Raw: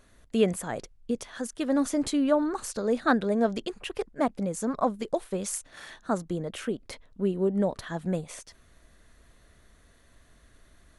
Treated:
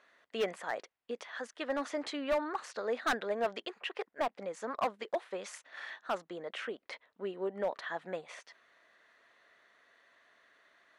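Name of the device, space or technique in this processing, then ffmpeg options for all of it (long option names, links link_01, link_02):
megaphone: -af "highpass=650,lowpass=3300,equalizer=frequency=1900:width_type=o:width=0.24:gain=4.5,asoftclip=type=hard:threshold=-25.5dB"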